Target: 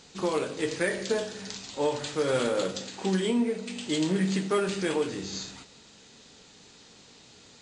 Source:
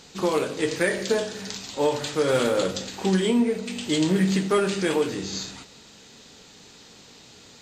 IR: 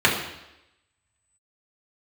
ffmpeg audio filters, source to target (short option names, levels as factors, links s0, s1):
-filter_complex "[0:a]asettb=1/sr,asplit=3[s0][s1][s2];[s0]atrim=end=2.494[s3];[s1]atrim=start=2.49:end=4.69,asetpts=PTS-STARTPTS,afade=t=in:d=0.004:c=qsin,afade=t=out:st=2.196:d=0.004:c=qsin,highpass=120[s4];[s2]atrim=start=4.686[s5];[s3][s4]acrossfade=d=0.004:c1=hsin:c2=qsin[s6];[s6][s5]acrossfade=d=0.004:c1=qsin:c2=hsin,volume=0.596" -ar 24000 -c:a mp2 -b:a 128k